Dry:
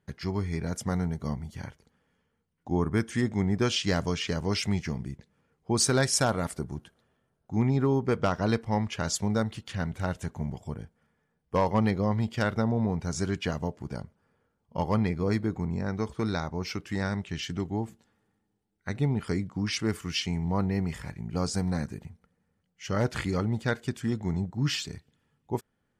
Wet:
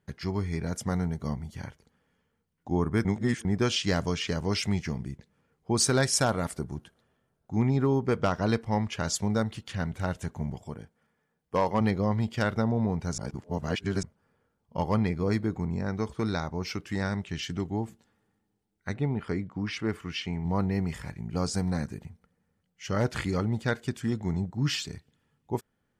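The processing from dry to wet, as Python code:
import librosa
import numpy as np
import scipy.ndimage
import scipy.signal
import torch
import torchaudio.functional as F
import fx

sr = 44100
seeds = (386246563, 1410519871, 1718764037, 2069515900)

y = fx.low_shelf(x, sr, hz=110.0, db=-10.5, at=(10.64, 11.81))
y = fx.bass_treble(y, sr, bass_db=-3, treble_db=-13, at=(18.94, 20.45))
y = fx.edit(y, sr, fx.reverse_span(start_s=3.05, length_s=0.4),
    fx.reverse_span(start_s=13.18, length_s=0.85), tone=tone)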